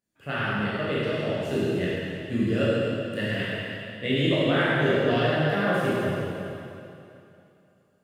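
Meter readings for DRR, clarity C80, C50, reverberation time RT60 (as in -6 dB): -9.5 dB, -2.5 dB, -4.5 dB, 2.8 s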